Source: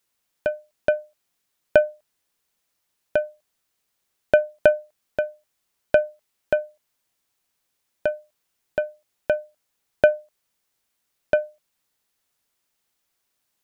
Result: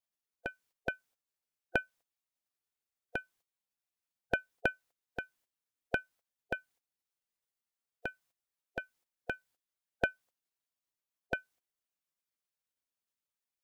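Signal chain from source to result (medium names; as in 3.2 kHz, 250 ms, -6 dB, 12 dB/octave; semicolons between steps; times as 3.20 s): spectral gate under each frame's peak -10 dB weak; trim -6.5 dB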